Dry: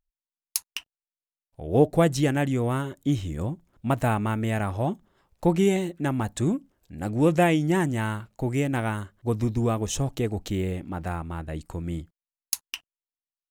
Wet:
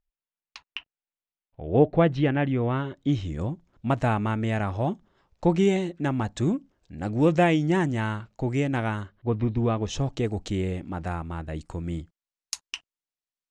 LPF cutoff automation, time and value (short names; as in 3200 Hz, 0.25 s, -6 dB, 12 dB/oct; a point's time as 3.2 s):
LPF 24 dB/oct
2.58 s 3300 Hz
3.35 s 6600 Hz
9 s 6600 Hz
9.33 s 3000 Hz
10.32 s 7900 Hz